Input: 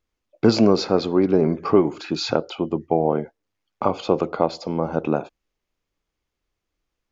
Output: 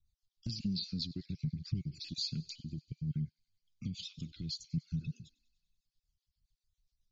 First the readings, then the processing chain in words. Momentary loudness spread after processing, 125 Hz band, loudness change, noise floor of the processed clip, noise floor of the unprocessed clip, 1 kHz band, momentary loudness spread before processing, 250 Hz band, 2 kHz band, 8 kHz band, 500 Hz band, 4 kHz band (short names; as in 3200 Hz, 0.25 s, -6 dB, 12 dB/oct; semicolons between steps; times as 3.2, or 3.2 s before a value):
8 LU, -8.5 dB, -18.0 dB, under -85 dBFS, -82 dBFS, under -40 dB, 9 LU, -19.5 dB, -25.0 dB, n/a, under -40 dB, -9.0 dB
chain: random spectral dropouts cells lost 32%; LPF 6400 Hz 12 dB/oct; spectral repair 5.03–5.56, 220–2600 Hz both; Chebyshev band-stop 150–4100 Hz, order 3; bell 1800 Hz +7 dB 0.71 oct; in parallel at -1.5 dB: limiter -28 dBFS, peak gain reduction 10.5 dB; on the sum: compressor 6:1, threshold -29 dBFS, peak gain reduction 9.5 dB; rotary speaker horn 7.5 Hz; flange 0.62 Hz, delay 0.2 ms, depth 5.1 ms, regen +36%; thin delay 97 ms, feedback 69%, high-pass 1800 Hz, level -22 dB; gain +1.5 dB